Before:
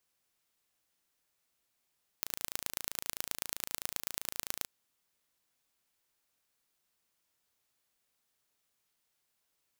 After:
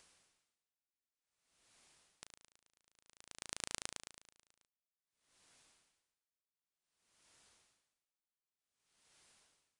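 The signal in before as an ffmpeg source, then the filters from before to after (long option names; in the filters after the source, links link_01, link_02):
-f lavfi -i "aevalsrc='0.531*eq(mod(n,1592),0)*(0.5+0.5*eq(mod(n,4776),0))':duration=2.42:sample_rate=44100"
-af "acompressor=mode=upward:threshold=-52dB:ratio=2.5,aresample=22050,aresample=44100,aeval=exprs='val(0)*pow(10,-36*(0.5-0.5*cos(2*PI*0.54*n/s))/20)':channel_layout=same"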